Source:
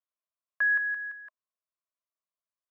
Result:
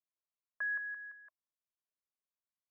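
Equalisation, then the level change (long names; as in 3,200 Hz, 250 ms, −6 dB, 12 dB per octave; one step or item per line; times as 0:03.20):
low-pass filter 1,500 Hz 12 dB per octave
−7.0 dB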